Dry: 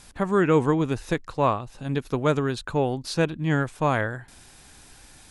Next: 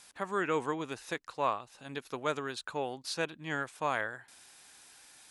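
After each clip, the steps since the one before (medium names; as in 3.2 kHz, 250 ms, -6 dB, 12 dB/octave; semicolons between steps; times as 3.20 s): high-pass 920 Hz 6 dB/octave; trim -4.5 dB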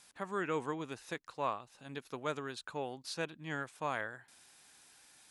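peaking EQ 160 Hz +3.5 dB 1.7 oct; trim -5 dB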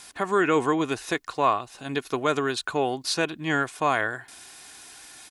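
comb 2.8 ms, depth 35%; in parallel at 0 dB: peak limiter -29.5 dBFS, peak gain reduction 8 dB; on the sum: trim +9 dB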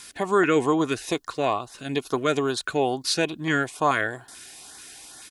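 LFO notch saw up 2.3 Hz 650–2900 Hz; trim +2.5 dB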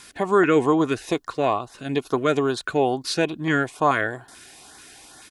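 treble shelf 2.7 kHz -7.5 dB; trim +3 dB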